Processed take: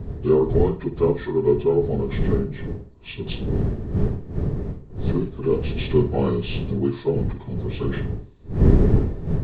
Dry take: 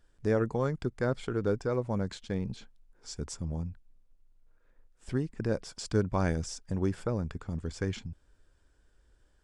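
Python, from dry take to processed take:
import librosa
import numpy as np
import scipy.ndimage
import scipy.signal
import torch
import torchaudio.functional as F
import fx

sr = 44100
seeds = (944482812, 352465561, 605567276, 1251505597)

p1 = fx.partial_stretch(x, sr, pct=77)
p2 = fx.dmg_wind(p1, sr, seeds[0], corner_hz=130.0, level_db=-30.0)
p3 = fx.high_shelf(p2, sr, hz=5900.0, db=8.0)
p4 = fx.small_body(p3, sr, hz=(410.0, 1800.0), ring_ms=45, db=10)
p5 = p4 + fx.room_flutter(p4, sr, wall_m=9.4, rt60_s=0.31, dry=0)
y = p5 * 10.0 ** (5.5 / 20.0)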